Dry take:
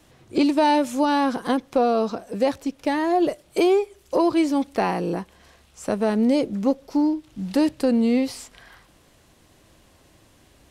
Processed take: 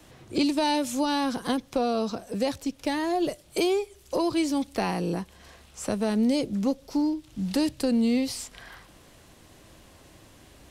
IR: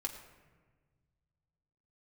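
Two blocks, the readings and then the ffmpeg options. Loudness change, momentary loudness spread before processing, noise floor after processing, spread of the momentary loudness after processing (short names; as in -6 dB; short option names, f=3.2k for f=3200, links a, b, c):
-5.0 dB, 8 LU, -54 dBFS, 8 LU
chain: -filter_complex "[0:a]acrossover=split=170|3000[a][b][c];[b]acompressor=threshold=-45dB:ratio=1.5[d];[a][d][c]amix=inputs=3:normalize=0,volume=3dB"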